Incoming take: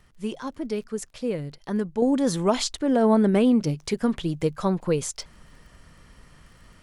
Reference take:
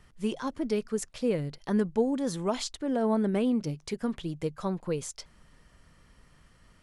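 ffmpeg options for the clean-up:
-af "adeclick=t=4,asetnsamples=n=441:p=0,asendcmd='2.02 volume volume -7.5dB',volume=0dB"

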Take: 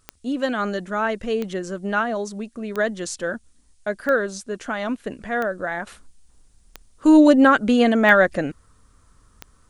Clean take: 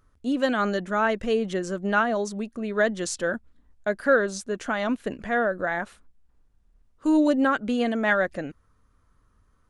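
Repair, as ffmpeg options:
-af "adeclick=t=4,agate=range=-21dB:threshold=-48dB,asetnsamples=n=441:p=0,asendcmd='5.87 volume volume -8dB',volume=0dB"

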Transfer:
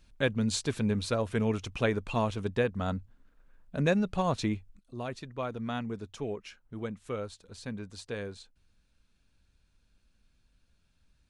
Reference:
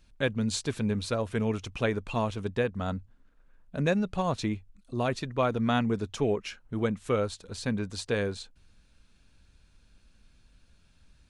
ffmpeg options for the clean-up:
-af "asetnsamples=n=441:p=0,asendcmd='4.79 volume volume 8.5dB',volume=0dB"

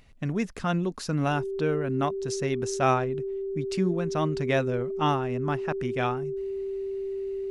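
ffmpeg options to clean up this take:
-af "bandreject=f=390:w=30"

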